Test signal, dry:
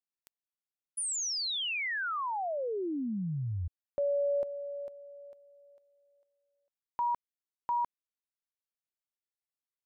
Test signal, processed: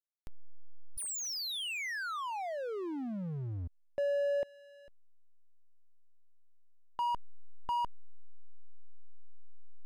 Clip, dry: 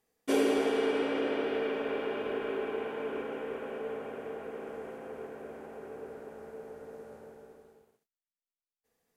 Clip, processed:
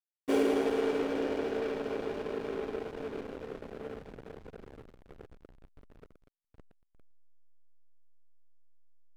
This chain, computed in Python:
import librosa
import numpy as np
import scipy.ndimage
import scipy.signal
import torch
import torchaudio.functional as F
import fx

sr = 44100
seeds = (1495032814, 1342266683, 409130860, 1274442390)

y = fx.backlash(x, sr, play_db=-31.0)